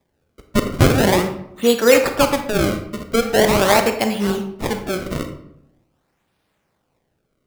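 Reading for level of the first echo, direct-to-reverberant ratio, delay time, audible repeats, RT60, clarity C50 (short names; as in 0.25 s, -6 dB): none, 6.0 dB, none, none, 0.80 s, 8.0 dB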